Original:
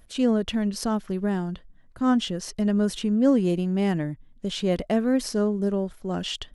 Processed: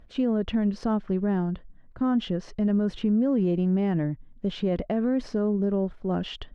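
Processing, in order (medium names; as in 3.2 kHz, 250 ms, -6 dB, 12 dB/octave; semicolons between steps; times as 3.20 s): tape spacing loss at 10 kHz 26 dB; peak limiter -20 dBFS, peak gain reduction 9 dB; treble shelf 7.6 kHz -10 dB; trim +3 dB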